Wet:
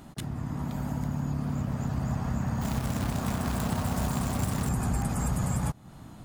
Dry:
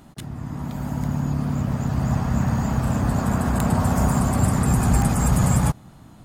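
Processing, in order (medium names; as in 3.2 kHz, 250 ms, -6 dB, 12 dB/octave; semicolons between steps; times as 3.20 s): 2.61–4.69 s: companded quantiser 4-bit; compression 2.5:1, threshold -30 dBFS, peak gain reduction 11.5 dB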